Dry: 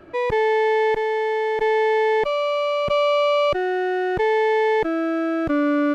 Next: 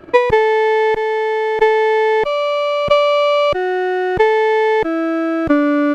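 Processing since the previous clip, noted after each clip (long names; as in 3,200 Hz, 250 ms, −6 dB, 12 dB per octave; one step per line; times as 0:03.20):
transient designer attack +12 dB, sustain −2 dB
level +4.5 dB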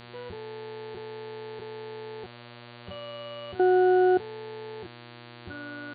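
resonances in every octave F#, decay 0.15 s
output level in coarse steps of 20 dB
hum with harmonics 120 Hz, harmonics 38, −47 dBFS −3 dB per octave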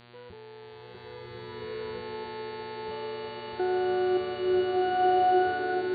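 slow-attack reverb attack 1,620 ms, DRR −9.5 dB
level −7 dB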